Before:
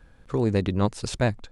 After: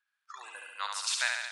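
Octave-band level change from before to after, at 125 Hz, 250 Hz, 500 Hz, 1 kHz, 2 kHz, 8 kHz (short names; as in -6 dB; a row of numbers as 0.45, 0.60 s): under -40 dB, under -40 dB, -26.5 dB, -5.5 dB, +3.5 dB, +5.0 dB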